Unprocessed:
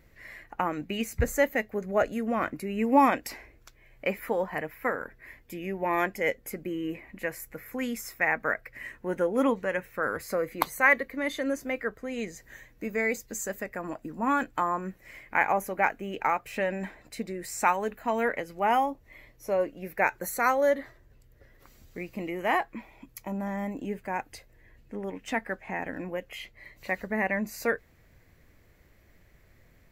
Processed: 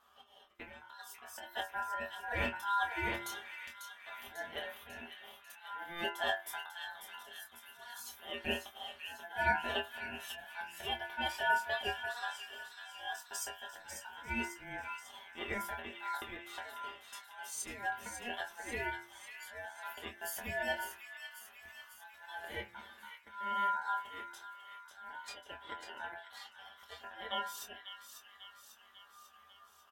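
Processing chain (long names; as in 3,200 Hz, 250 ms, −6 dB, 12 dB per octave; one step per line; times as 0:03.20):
parametric band 81 Hz −5 dB 2 octaves
hum removal 77.58 Hz, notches 14
volume swells 375 ms
stiff-string resonator 64 Hz, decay 0.38 s, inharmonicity 0.008
ring modulation 1,200 Hz
double-tracking delay 25 ms −6 dB
delay with a high-pass on its return 545 ms, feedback 58%, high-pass 1,900 Hz, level −7 dB
level +5.5 dB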